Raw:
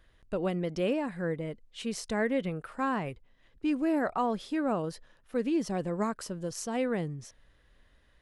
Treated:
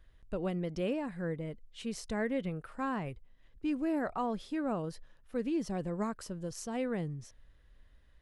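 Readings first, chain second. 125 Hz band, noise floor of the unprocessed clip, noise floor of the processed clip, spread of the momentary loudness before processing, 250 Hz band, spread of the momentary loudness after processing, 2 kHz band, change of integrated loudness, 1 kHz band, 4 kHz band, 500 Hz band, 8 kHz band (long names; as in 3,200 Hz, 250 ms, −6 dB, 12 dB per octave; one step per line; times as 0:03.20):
−2.0 dB, −64 dBFS, −62 dBFS, 10 LU, −3.5 dB, 9 LU, −5.5 dB, −4.5 dB, −5.5 dB, −5.5 dB, −5.0 dB, −5.5 dB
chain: low-shelf EQ 120 Hz +10 dB
level −5.5 dB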